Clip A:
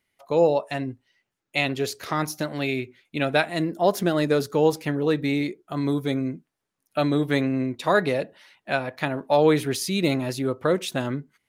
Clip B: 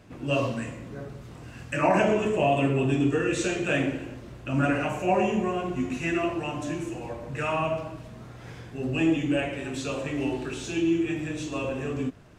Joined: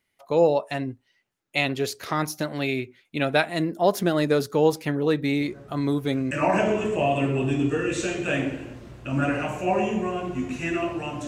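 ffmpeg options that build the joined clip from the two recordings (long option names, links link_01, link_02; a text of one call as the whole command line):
ffmpeg -i cue0.wav -i cue1.wav -filter_complex "[1:a]asplit=2[link_01][link_02];[0:a]apad=whole_dur=11.27,atrim=end=11.27,atrim=end=6.312[link_03];[link_02]atrim=start=1.718:end=6.68[link_04];[link_01]atrim=start=0.82:end=1.72,asetpts=PTS-STARTPTS,volume=-7.5dB,afade=type=in:duration=0.004:curve=hsin,afade=type=out:start_time=0.896:duration=0.004:curve=hsin,adelay=238581S[link_05];[link_03][link_04]acrossfade=duration=0.004:curve1=hsin:curve2=hsin[link_06];[link_06][link_05]amix=inputs=2:normalize=0" out.wav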